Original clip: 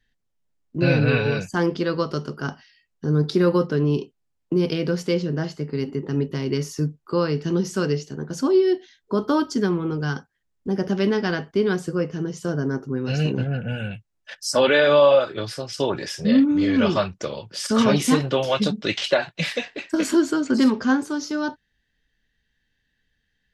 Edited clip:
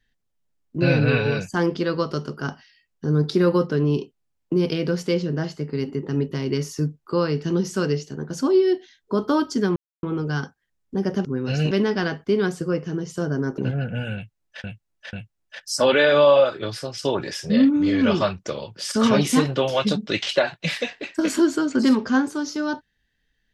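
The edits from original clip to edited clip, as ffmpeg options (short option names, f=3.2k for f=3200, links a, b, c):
-filter_complex "[0:a]asplit=7[a][b][c][d][e][f][g];[a]atrim=end=9.76,asetpts=PTS-STARTPTS,afade=t=out:st=9.756:d=0.004:c=hsin,apad=pad_dur=0.27[h];[b]atrim=start=9.76:end=10.982,asetpts=PTS-STARTPTS,afade=t=in:d=0.004:c=hsin[i];[c]atrim=start=12.848:end=13.312[j];[d]atrim=start=10.978:end=12.852[k];[e]atrim=start=13.308:end=14.372[l];[f]atrim=start=13.878:end=14.372[m];[g]atrim=start=13.878[n];[h][i]concat=n=2:v=0:a=1[o];[o][j]acrossfade=d=0.004:c1=hsin:c2=hsin[p];[p][k]acrossfade=d=0.004:c1=hsin:c2=hsin[q];[q][l]acrossfade=d=0.004:c1=hsin:c2=hsin[r];[r][m]acrossfade=d=0.004:c1=hsin:c2=hsin[s];[s][n]acrossfade=d=0.004:c1=hsin:c2=hsin"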